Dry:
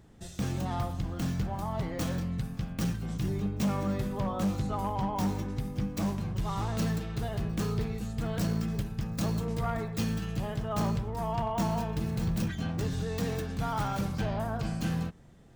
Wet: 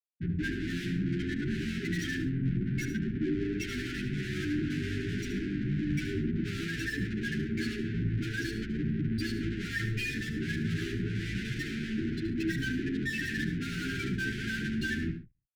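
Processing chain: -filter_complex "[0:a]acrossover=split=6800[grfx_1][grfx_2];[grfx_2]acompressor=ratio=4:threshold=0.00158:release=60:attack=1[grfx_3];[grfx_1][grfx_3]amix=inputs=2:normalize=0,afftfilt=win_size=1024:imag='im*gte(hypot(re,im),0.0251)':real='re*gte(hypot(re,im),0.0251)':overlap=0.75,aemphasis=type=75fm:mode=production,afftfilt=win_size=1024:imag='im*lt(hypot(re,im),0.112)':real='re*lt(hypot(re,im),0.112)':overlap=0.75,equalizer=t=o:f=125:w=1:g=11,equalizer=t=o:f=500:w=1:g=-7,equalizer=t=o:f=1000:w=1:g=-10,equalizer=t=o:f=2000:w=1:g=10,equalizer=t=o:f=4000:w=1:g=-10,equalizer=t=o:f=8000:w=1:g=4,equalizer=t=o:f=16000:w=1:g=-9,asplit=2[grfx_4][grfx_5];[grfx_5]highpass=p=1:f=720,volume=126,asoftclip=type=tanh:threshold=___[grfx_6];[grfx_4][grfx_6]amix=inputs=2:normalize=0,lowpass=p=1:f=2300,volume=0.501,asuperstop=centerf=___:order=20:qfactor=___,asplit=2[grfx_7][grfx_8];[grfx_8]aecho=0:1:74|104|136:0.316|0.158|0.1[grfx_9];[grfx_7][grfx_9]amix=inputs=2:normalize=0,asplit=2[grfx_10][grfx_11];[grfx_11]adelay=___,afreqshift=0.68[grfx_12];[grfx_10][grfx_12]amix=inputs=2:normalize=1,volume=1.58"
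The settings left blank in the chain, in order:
0.0531, 770, 0.7, 11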